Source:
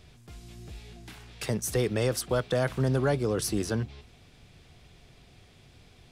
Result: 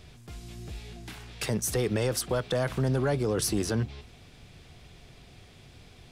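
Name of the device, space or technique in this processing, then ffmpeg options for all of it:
soft clipper into limiter: -af "asoftclip=type=tanh:threshold=-16dB,alimiter=limit=-22.5dB:level=0:latency=1:release=72,volume=3.5dB"

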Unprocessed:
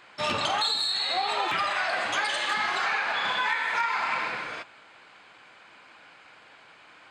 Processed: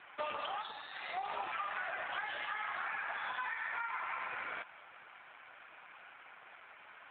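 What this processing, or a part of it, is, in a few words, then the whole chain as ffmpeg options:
voicemail: -filter_complex "[0:a]asettb=1/sr,asplit=3[link_01][link_02][link_03];[link_01]atrim=end=1.264[link_04];[link_02]atrim=start=1.26:end=2.46,asetpts=PTS-STARTPTS,afade=type=in:duration=0.004:curve=qsin,afade=type=out:start_time=1.196:duration=0.004:curve=qsin,equalizer=frequency=160:width=5:gain=-4[link_05];[link_03]atrim=start=2.456[link_06];[link_04][link_05]acrossfade=duration=0.004:curve1=hsin:curve2=qsin[link_07];[link_07][link_06]acrossfade=duration=0.004:curve1=qsin:curve2=hsin,highpass=410,lowpass=2900,acompressor=threshold=-35dB:ratio=8,volume=1dB" -ar 8000 -c:a libopencore_amrnb -b:a 7400

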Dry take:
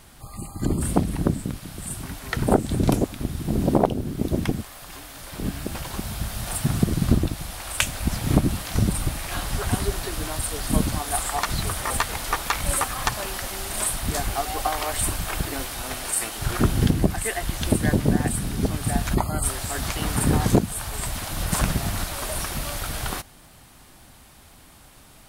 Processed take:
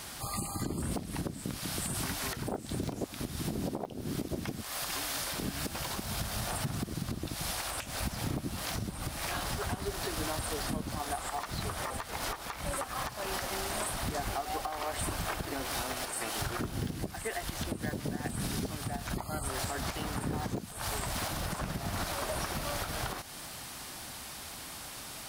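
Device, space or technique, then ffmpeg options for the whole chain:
broadcast voice chain: -af "highpass=frequency=75:poles=1,lowshelf=frequency=450:gain=-6,deesser=0.75,acompressor=threshold=-38dB:ratio=4,equalizer=frequency=5200:width_type=o:width=0.77:gain=4,alimiter=level_in=7dB:limit=-24dB:level=0:latency=1:release=253,volume=-7dB,volume=7.5dB"

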